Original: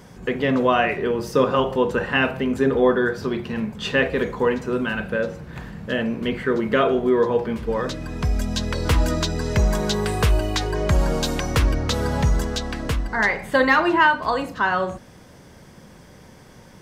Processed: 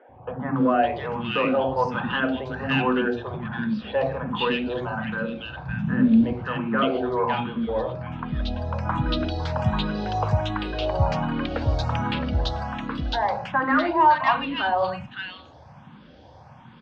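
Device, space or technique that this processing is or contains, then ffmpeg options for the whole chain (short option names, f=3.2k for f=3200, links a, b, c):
barber-pole phaser into a guitar amplifier: -filter_complex "[0:a]asplit=2[a][b];[b]afreqshift=1.3[c];[a][c]amix=inputs=2:normalize=1,asoftclip=type=tanh:threshold=-12.5dB,highpass=83,equalizer=f=180:t=q:w=4:g=-5,equalizer=f=410:t=q:w=4:g=-10,equalizer=f=810:t=q:w=4:g=5,equalizer=f=2k:t=q:w=4:g=-8,lowpass=f=3.6k:w=0.5412,lowpass=f=3.6k:w=1.3066,asettb=1/sr,asplit=3[d][e][f];[d]atrim=end=5.604[g];[e]atrim=start=5.6:end=6.24,asetpts=PTS-STARTPTS,afade=t=in:d=0.004:c=qsin,afade=t=out:st=0.636:d=0.004:c=qsin,lowshelf=f=330:t=q:w=1.5:g=8.5[h];[f]atrim=start=6.236[i];[g][h]acrossfade=d=0.004:c1=hsin:c2=qsin[j];[j][i]acrossfade=d=0.004:c1=qsin:c2=hsin,acrossover=split=360|1800[k][l][m];[k]adelay=90[n];[m]adelay=560[o];[n][l][o]amix=inputs=3:normalize=0,volume=4.5dB"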